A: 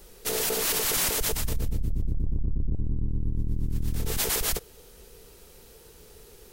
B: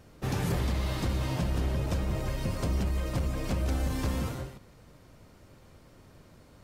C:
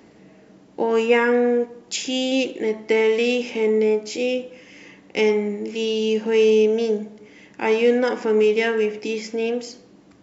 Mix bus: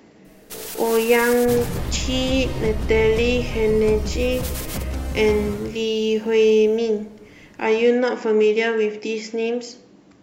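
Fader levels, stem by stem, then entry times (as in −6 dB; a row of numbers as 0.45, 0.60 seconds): −5.5, +2.0, +0.5 decibels; 0.25, 1.25, 0.00 seconds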